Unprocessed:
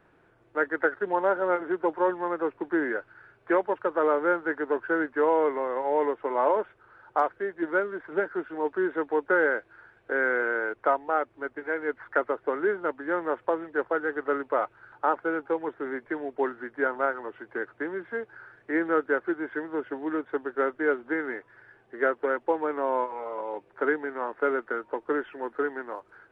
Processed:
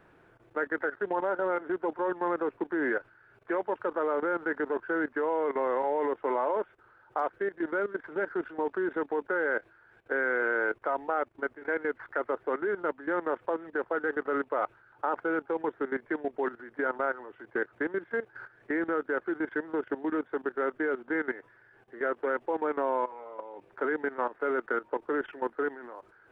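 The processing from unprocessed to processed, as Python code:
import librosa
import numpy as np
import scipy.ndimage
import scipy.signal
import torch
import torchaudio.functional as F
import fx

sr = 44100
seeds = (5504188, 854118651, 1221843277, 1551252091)

y = fx.level_steps(x, sr, step_db=16)
y = F.gain(torch.from_numpy(y), 4.0).numpy()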